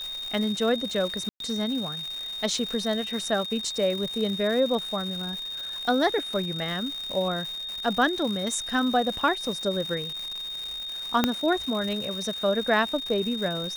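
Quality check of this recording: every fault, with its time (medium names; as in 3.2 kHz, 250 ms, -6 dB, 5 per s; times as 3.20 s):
crackle 330 per s -32 dBFS
whine 3.7 kHz -32 dBFS
1.29–1.40 s: dropout 112 ms
11.24 s: pop -6 dBFS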